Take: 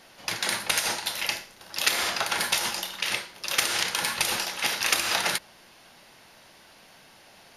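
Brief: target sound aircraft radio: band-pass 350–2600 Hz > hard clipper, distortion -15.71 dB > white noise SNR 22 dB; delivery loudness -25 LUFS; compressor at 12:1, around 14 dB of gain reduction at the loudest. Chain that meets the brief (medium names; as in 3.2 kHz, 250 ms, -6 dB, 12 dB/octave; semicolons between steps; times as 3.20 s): compression 12:1, threshold -33 dBFS; band-pass 350–2600 Hz; hard clipper -33 dBFS; white noise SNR 22 dB; trim +16 dB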